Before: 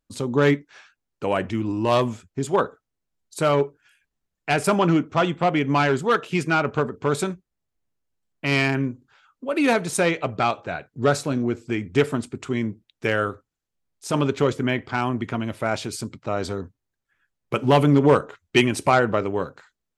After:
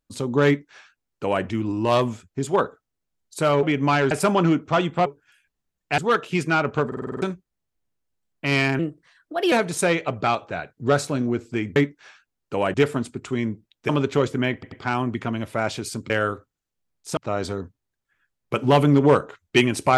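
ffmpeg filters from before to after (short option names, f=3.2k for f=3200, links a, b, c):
-filter_complex "[0:a]asplit=21[a][b][c][d][e][f][g][h][i][j][k][l][m][n][o][p][q][r][s][t][u];[a]atrim=end=3.632[v];[b]atrim=start=5.498:end=5.982[w];[c]atrim=start=4.548:end=5.502[x];[d]atrim=start=3.628:end=4.552[y];[e]atrim=start=5.978:end=6.922[z];[f]atrim=start=6.868:end=6.922[aa];[g]atrim=start=6.868:end=6.922[ab];[h]atrim=start=6.868:end=6.922[ac];[i]atrim=start=6.868:end=6.922[ad];[j]atrim=start=6.868:end=6.922[ae];[k]atrim=start=6.868:end=6.922[af];[l]atrim=start=7.218:end=8.794[ag];[m]atrim=start=8.79:end=9.68,asetpts=PTS-STARTPTS,asetrate=53802,aresample=44100,atrim=end_sample=32171,asetpts=PTS-STARTPTS[ah];[n]atrim=start=9.676:end=11.922[ai];[o]atrim=start=0.458:end=1.442[aj];[p]atrim=start=11.918:end=13.072[ak];[q]atrim=start=14.138:end=14.882[al];[r]atrim=start=14.788:end=14.882[am];[s]atrim=start=14.788:end=16.172[an];[t]atrim=start=13.068:end=14.142[ao];[u]atrim=start=16.168[ap];[v][w]acrossfade=d=0.004:c1=hsin:c2=hsin[aq];[aq][x]acrossfade=d=0.004:c1=hsin:c2=hsin[ar];[ar][y]acrossfade=d=0.004:c1=hsin:c2=hsin[as];[as][z]acrossfade=d=0.004:c1=hsin:c2=hsin[at];[at][aa]acrossfade=d=0.004:c1=hsin:c2=hsin[au];[au][ab]acrossfade=d=0.004:c1=hsin:c2=hsin[av];[av][ac]acrossfade=d=0.004:c1=hsin:c2=hsin[aw];[aw][ad]acrossfade=d=0.004:c1=hsin:c2=hsin[ax];[ax][ae]acrossfade=d=0.004:c1=hsin:c2=hsin[ay];[ay][af]acrossfade=d=0.004:c1=hsin:c2=hsin[az];[az][ag]acrossfade=d=0.004:c1=hsin:c2=hsin[ba];[ba][ah]acrossfade=d=0.004:c1=hsin:c2=hsin[bb];[bb][ai]acrossfade=d=0.004:c1=hsin:c2=hsin[bc];[bc][aj]acrossfade=d=0.004:c1=hsin:c2=hsin[bd];[bd][ak]acrossfade=d=0.004:c1=hsin:c2=hsin[be];[be][al]acrossfade=d=0.004:c1=hsin:c2=hsin[bf];[bf][am]acrossfade=d=0.004:c1=hsin:c2=hsin[bg];[bg][an]acrossfade=d=0.004:c1=hsin:c2=hsin[bh];[bh][ao]acrossfade=d=0.004:c1=hsin:c2=hsin[bi];[bi][ap]acrossfade=d=0.004:c1=hsin:c2=hsin"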